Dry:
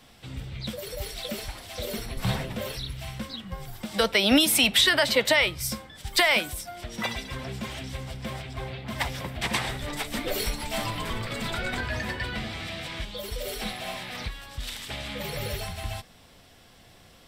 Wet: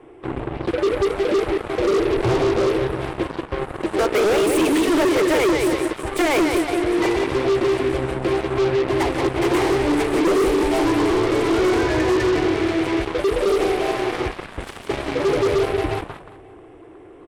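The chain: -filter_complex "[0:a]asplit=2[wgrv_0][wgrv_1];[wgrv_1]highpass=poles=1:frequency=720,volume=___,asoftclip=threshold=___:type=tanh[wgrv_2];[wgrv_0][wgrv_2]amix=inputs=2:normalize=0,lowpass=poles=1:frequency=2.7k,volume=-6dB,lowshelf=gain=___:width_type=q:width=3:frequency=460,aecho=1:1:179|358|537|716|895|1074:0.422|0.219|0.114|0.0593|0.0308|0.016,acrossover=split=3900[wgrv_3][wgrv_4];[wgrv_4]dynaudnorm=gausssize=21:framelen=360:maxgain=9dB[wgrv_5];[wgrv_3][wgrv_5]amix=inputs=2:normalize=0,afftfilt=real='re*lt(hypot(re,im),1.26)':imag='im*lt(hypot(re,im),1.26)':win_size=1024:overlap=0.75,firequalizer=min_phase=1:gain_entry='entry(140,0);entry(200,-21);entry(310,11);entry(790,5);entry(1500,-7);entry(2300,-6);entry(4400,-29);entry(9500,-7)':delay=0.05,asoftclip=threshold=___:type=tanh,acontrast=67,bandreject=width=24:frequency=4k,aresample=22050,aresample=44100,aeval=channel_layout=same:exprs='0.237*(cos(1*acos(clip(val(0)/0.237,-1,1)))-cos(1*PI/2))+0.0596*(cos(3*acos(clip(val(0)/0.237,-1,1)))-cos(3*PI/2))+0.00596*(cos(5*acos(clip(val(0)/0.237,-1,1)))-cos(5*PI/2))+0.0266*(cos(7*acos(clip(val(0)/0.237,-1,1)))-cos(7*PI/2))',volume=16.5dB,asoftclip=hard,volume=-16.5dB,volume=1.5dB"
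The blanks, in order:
15dB, -9dB, 6.5, -20dB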